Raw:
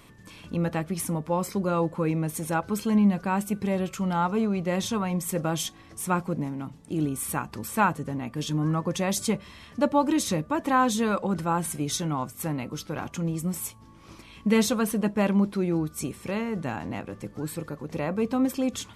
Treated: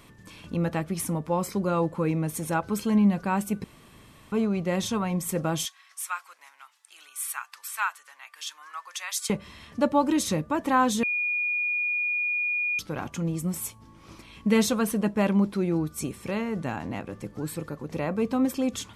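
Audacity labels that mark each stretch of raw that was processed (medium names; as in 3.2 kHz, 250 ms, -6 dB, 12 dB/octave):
3.640000	4.320000	room tone
5.650000	9.300000	high-pass 1.2 kHz 24 dB/octave
11.030000	12.790000	bleep 2.44 kHz -24 dBFS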